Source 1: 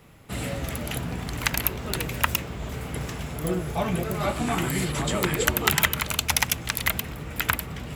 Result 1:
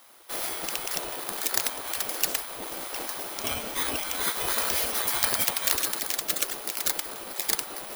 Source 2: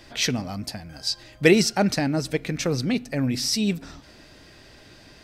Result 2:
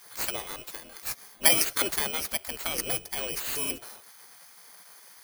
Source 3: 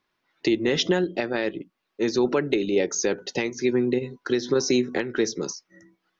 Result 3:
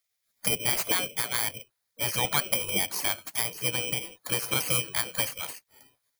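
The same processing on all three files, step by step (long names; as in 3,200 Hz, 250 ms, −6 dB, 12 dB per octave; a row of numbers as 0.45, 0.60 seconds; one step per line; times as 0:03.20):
samples in bit-reversed order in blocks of 16 samples
gate on every frequency bin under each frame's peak −15 dB weak
loudness normalisation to −27 LKFS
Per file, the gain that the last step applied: +5.0, +2.5, +4.0 decibels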